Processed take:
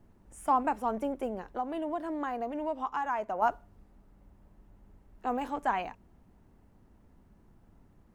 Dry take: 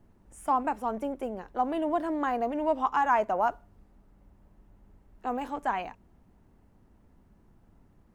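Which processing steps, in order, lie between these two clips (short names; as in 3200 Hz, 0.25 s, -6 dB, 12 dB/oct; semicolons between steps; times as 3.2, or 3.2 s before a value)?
1.41–3.42 compressor 2:1, threshold -35 dBFS, peak gain reduction 8.5 dB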